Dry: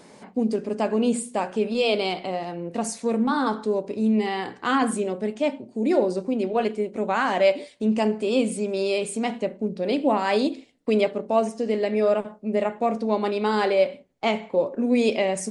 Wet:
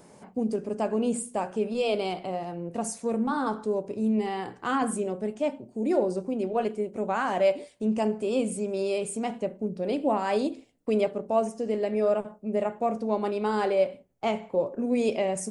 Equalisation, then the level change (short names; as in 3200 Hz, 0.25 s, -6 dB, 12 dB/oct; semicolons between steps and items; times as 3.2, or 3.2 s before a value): graphic EQ 250/500/1000/2000/4000/8000 Hz -7/-4/-4/-8/-11/-3 dB; +2.5 dB